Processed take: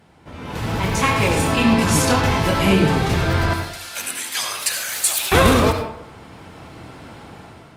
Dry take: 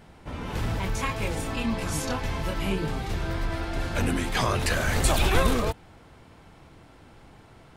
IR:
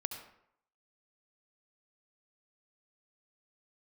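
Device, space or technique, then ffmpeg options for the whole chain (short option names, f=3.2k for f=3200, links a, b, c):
far-field microphone of a smart speaker: -filter_complex "[0:a]asettb=1/sr,asplit=3[a][b][c];[a]atrim=end=3.534[d];[b]atrim=start=3.53:end=5.32,asetpts=PTS-STARTPTS,afade=t=in:d=0.004:c=qsin,afade=t=out:st=1.786:d=0.004:c=qsin,aderivative[e];[c]atrim=start=5.316[f];[d][e]acrossfade=d=0.004:c1=hsin:c2=qsin[g];[g][f]acrossfade=d=0.004:c1=qsin:c2=hsin[h];[1:a]atrim=start_sample=2205[i];[h][i]afir=irnorm=-1:irlink=0,highpass=80,dynaudnorm=f=310:g=5:m=14dB" -ar 48000 -c:a libopus -b:a 48k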